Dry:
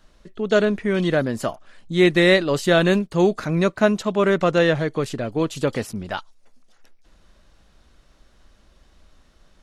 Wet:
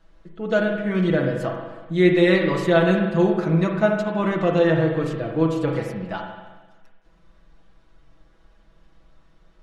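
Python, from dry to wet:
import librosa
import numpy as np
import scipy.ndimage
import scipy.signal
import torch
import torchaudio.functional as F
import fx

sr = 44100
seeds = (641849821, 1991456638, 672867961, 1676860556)

y = fx.high_shelf(x, sr, hz=3500.0, db=-11.0)
y = y + 0.74 * np.pad(y, (int(6.1 * sr / 1000.0), 0))[:len(y)]
y = fx.rev_spring(y, sr, rt60_s=1.3, pass_ms=(37, 44), chirp_ms=60, drr_db=2.0)
y = y * 10.0 ** (-4.0 / 20.0)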